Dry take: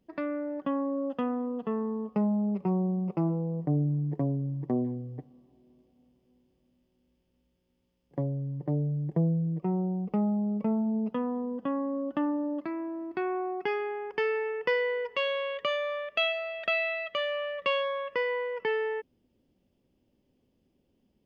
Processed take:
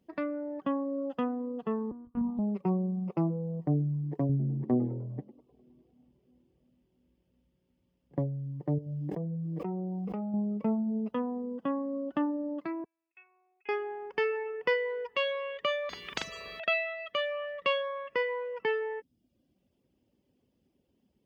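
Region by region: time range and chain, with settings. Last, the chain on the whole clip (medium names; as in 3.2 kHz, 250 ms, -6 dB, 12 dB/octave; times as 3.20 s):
1.91–2.39 s: distance through air 460 m + static phaser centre 2.3 kHz, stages 6 + monotone LPC vocoder at 8 kHz 240 Hz
4.29–8.19 s: tone controls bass +5 dB, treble -6 dB + frequency-shifting echo 101 ms, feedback 41%, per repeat +84 Hz, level -13.5 dB
8.78–10.34 s: peaking EQ 140 Hz -4 dB 1.1 oct + feedback comb 98 Hz, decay 0.67 s + level flattener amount 100%
12.84–13.69 s: band-pass filter 2.5 kHz, Q 14 + distance through air 310 m
15.89–16.60 s: doubling 43 ms -4 dB + spectrum-flattening compressor 10:1
whole clip: reverb removal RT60 0.63 s; high-pass 50 Hz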